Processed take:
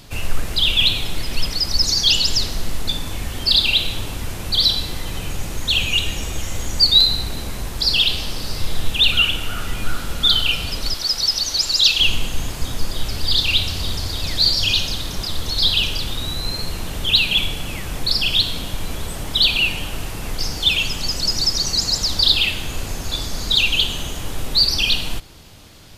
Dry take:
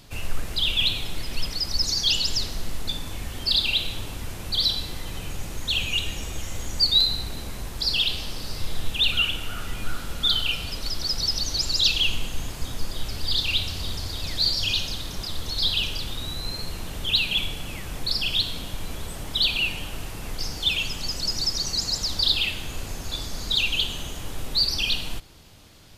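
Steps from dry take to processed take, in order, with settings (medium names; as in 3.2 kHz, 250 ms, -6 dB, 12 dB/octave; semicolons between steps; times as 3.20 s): 10.94–12.00 s: bass shelf 360 Hz -12 dB; trim +6.5 dB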